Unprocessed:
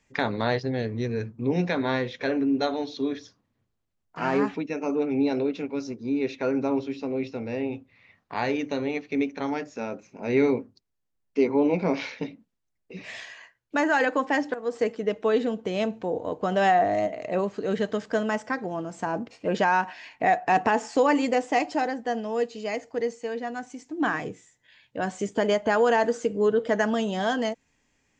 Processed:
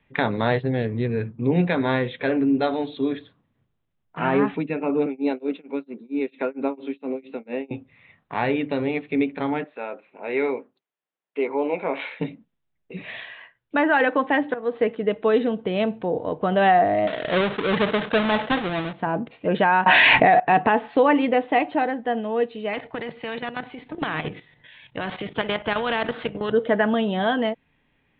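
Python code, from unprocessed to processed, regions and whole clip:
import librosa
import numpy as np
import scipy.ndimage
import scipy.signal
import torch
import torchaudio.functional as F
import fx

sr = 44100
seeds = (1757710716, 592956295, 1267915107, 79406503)

y = fx.chain(x, sr, fx.steep_highpass(hz=190.0, slope=36),
    fx.tremolo(hz=4.4, depth=0.98), at=(5.06, 7.71))
y = fx.chain(y, sr, fx.bandpass_edges(low_hz=500.0, high_hz=4800.0),
    fx.air_absorb(metres=62.0), at=(9.64, 12.2))
y = fx.chain(y, sr, fx.halfwave_hold(),
    fx.low_shelf(hz=380.0, db=-6.0),
    fx.sustainer(db_per_s=130.0), at=(17.07, 18.93))
y = fx.chain(y, sr, fx.quant_float(bits=4),
    fx.env_flatten(amount_pct=100), at=(19.86, 20.4))
y = fx.chain(y, sr, fx.level_steps(step_db=11),
    fx.spectral_comp(ratio=2.0), at=(22.73, 26.52))
y = scipy.signal.sosfilt(scipy.signal.butter(16, 3800.0, 'lowpass', fs=sr, output='sos'), y)
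y = fx.peak_eq(y, sr, hz=150.0, db=7.0, octaves=0.31)
y = y * 10.0 ** (3.5 / 20.0)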